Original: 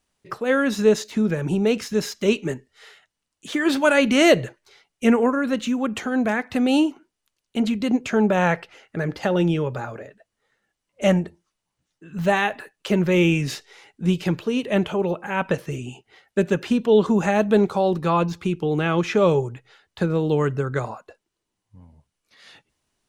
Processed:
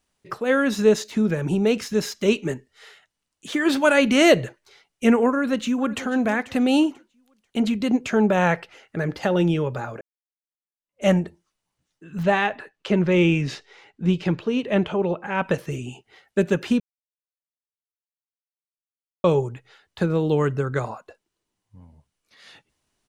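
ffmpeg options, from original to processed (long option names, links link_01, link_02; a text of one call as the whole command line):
ffmpeg -i in.wav -filter_complex "[0:a]asplit=2[link_01][link_02];[link_02]afade=type=in:start_time=5.29:duration=0.01,afade=type=out:start_time=6.03:duration=0.01,aecho=0:1:490|980|1470:0.177828|0.044457|0.0111142[link_03];[link_01][link_03]amix=inputs=2:normalize=0,asettb=1/sr,asplit=3[link_04][link_05][link_06];[link_04]atrim=end=12.234[link_07];[link_05]atrim=start=12.23:end=15.43,asetpts=PTS-STARTPTS,afade=type=in:duration=0.004:curve=qsin,afade=type=out:start_time=3.196:duration=0.004:curve=qsin,adynamicsmooth=sensitivity=0.5:basefreq=5500[link_08];[link_06]atrim=start=15.426[link_09];[link_07][link_08]acrossfade=duration=0.004:curve1=hsin:curve2=qsin[link_10];[link_10][link_09]acrossfade=duration=0.004:curve1=qsin:curve2=hsin,asplit=4[link_11][link_12][link_13][link_14];[link_11]atrim=end=10.01,asetpts=PTS-STARTPTS,afade=type=out:start_time=10.006:duration=0.004:curve=hsin[link_15];[link_12]atrim=start=10.01:end=16.8,asetpts=PTS-STARTPTS,afade=type=in:duration=1.07:curve=exp,afade=type=out:start_time=6.786:duration=0.004:curve=hsin[link_16];[link_13]atrim=start=16.8:end=19.24,asetpts=PTS-STARTPTS,volume=0[link_17];[link_14]atrim=start=19.24,asetpts=PTS-STARTPTS,afade=type=in:duration=0.004:curve=hsin[link_18];[link_15][link_16][link_17][link_18]concat=n=4:v=0:a=1" out.wav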